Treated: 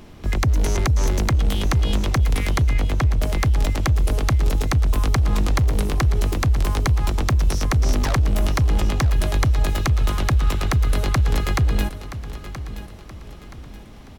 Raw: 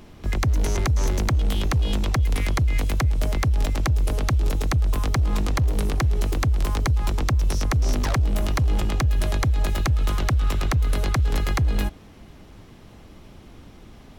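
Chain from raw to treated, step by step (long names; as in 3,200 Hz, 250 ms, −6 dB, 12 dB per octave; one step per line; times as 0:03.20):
0:02.73–0:03.22: high-shelf EQ 4,700 Hz −11 dB
repeating echo 975 ms, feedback 38%, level −13 dB
level +2.5 dB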